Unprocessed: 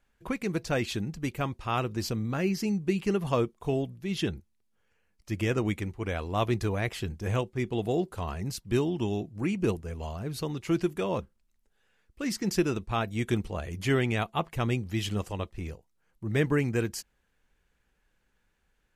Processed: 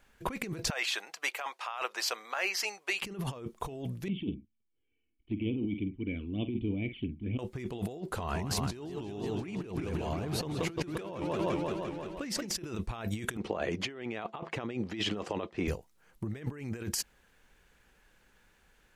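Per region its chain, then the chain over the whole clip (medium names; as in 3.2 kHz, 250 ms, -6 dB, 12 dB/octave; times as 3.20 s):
0.70–3.02 s: high-pass 690 Hz 24 dB/octave + treble shelf 5.1 kHz -7.5 dB
4.08–7.39 s: cascade formant filter i + doubling 48 ms -12 dB + touch-sensitive flanger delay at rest 2.8 ms, full sweep at -36 dBFS
8.01–12.55 s: treble shelf 6.5 kHz -6 dB + modulated delay 173 ms, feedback 70%, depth 204 cents, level -9 dB
13.37–15.68 s: band-pass 300–5300 Hz + tilt EQ -2 dB/octave
whole clip: bass shelf 220 Hz -5 dB; compressor with a negative ratio -40 dBFS, ratio -1; trim +4 dB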